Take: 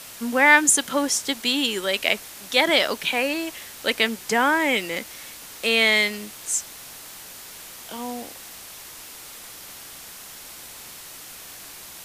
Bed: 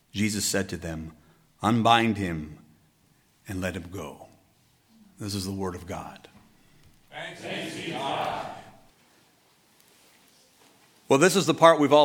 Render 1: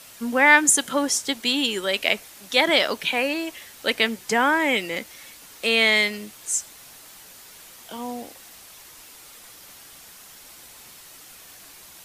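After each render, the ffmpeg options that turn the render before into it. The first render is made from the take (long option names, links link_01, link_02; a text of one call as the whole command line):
ffmpeg -i in.wav -af "afftdn=noise_reduction=6:noise_floor=-41" out.wav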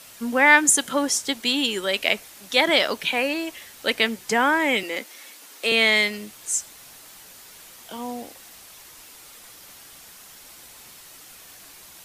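ffmpeg -i in.wav -filter_complex "[0:a]asettb=1/sr,asplit=3[link_01][link_02][link_03];[link_01]atrim=end=4.834[link_04];[link_02]atrim=start=4.83:end=5.72,asetpts=PTS-STARTPTS,afade=type=in:duration=0.004:curve=qsin,afade=type=out:start_time=0.886:duration=0.004:curve=qsin,highpass=frequency=240:width=0.5412,highpass=frequency=240:width=1.3066[link_05];[link_03]atrim=start=5.716[link_06];[link_04][link_05]acrossfade=duration=0.004:curve1=hsin:curve2=qsin[link_07];[link_07][link_06]acrossfade=duration=0.004:curve1=qsin:curve2=hsin" out.wav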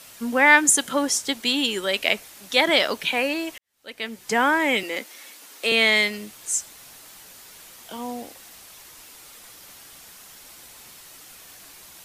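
ffmpeg -i in.wav -filter_complex "[0:a]asplit=2[link_01][link_02];[link_01]atrim=end=3.58,asetpts=PTS-STARTPTS,afade=type=out:start_time=3.576:duration=0.004:curve=hsin[link_03];[link_02]atrim=start=3.58,asetpts=PTS-STARTPTS,afade=type=in:duration=0.8:curve=qua[link_04];[link_03][link_04]concat=n=2:v=0:a=1" out.wav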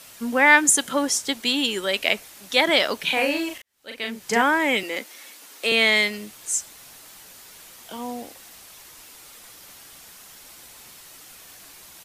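ffmpeg -i in.wav -filter_complex "[0:a]asplit=3[link_01][link_02][link_03];[link_01]afade=type=out:start_time=3.06:duration=0.02[link_04];[link_02]asplit=2[link_05][link_06];[link_06]adelay=39,volume=-3.5dB[link_07];[link_05][link_07]amix=inputs=2:normalize=0,afade=type=in:start_time=3.06:duration=0.02,afade=type=out:start_time=4.41:duration=0.02[link_08];[link_03]afade=type=in:start_time=4.41:duration=0.02[link_09];[link_04][link_08][link_09]amix=inputs=3:normalize=0" out.wav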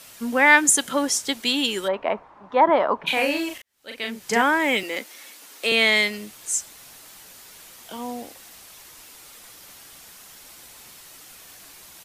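ffmpeg -i in.wav -filter_complex "[0:a]asplit=3[link_01][link_02][link_03];[link_01]afade=type=out:start_time=1.87:duration=0.02[link_04];[link_02]lowpass=frequency=1000:width_type=q:width=4,afade=type=in:start_time=1.87:duration=0.02,afade=type=out:start_time=3.06:duration=0.02[link_05];[link_03]afade=type=in:start_time=3.06:duration=0.02[link_06];[link_04][link_05][link_06]amix=inputs=3:normalize=0,asettb=1/sr,asplit=3[link_07][link_08][link_09];[link_07]atrim=end=4.634[link_10];[link_08]atrim=start=4.63:end=5.66,asetpts=PTS-STARTPTS,afade=type=in:duration=0.004:curve=qsin,afade=type=out:start_time=1.026:duration=0.004:curve=qsin,acrusher=bits=8:mode=log:mix=0:aa=0.000001[link_11];[link_09]atrim=start=5.656[link_12];[link_10][link_11]acrossfade=duration=0.004:curve1=hsin:curve2=qsin[link_13];[link_13][link_12]acrossfade=duration=0.004:curve1=qsin:curve2=hsin" out.wav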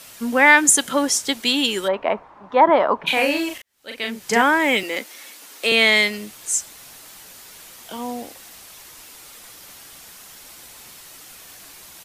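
ffmpeg -i in.wav -af "volume=3dB,alimiter=limit=-2dB:level=0:latency=1" out.wav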